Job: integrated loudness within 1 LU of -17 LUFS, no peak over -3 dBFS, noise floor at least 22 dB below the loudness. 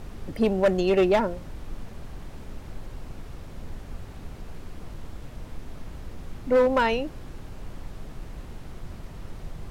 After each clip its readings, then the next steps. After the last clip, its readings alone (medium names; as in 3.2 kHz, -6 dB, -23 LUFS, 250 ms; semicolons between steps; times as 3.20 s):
clipped samples 0.5%; clipping level -14.5 dBFS; noise floor -42 dBFS; noise floor target -46 dBFS; loudness -23.5 LUFS; peak level -14.5 dBFS; loudness target -17.0 LUFS
-> clip repair -14.5 dBFS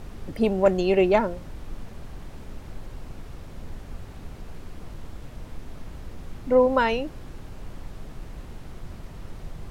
clipped samples 0.0%; noise floor -42 dBFS; noise floor target -45 dBFS
-> noise print and reduce 6 dB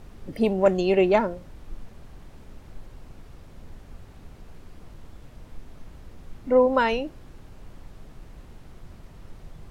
noise floor -48 dBFS; loudness -22.5 LUFS; peak level -6.0 dBFS; loudness target -17.0 LUFS
-> trim +5.5 dB; peak limiter -3 dBFS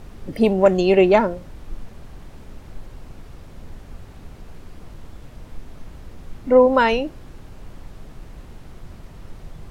loudness -17.0 LUFS; peak level -3.0 dBFS; noise floor -42 dBFS